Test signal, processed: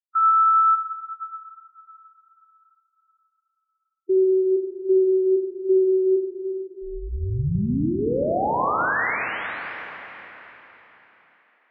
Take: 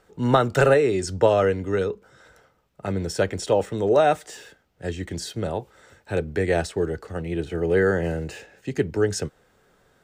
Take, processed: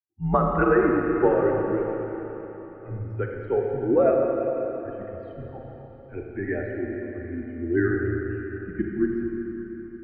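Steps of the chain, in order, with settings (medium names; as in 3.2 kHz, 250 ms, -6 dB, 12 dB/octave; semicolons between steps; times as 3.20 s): expander on every frequency bin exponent 2; Schroeder reverb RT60 3.9 s, combs from 28 ms, DRR -0.5 dB; mistuned SSB -82 Hz 150–2100 Hz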